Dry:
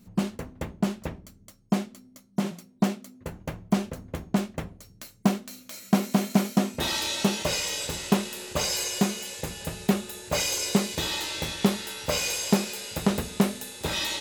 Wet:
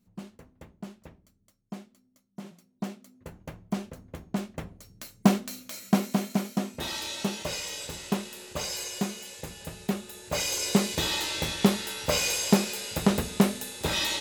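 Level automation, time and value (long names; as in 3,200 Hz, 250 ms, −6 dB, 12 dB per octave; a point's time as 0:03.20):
0:02.39 −15 dB
0:03.18 −7 dB
0:04.23 −7 dB
0:05.45 +4 dB
0:06.41 −6 dB
0:10.00 −6 dB
0:10.87 +1 dB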